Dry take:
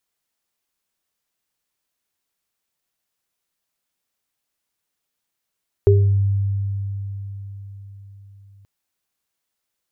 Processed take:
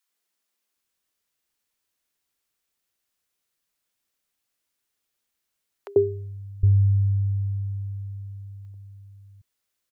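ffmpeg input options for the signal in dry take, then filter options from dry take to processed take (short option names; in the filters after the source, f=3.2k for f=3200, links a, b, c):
-f lavfi -i "aevalsrc='0.299*pow(10,-3*t/4.68)*sin(2*PI*99.2*t)+0.376*pow(10,-3*t/0.4)*sin(2*PI*401*t)':d=2.78:s=44100"
-filter_complex "[0:a]acrossover=split=160|790[a][b][c];[b]adelay=90[d];[a]adelay=760[e];[e][d][c]amix=inputs=3:normalize=0"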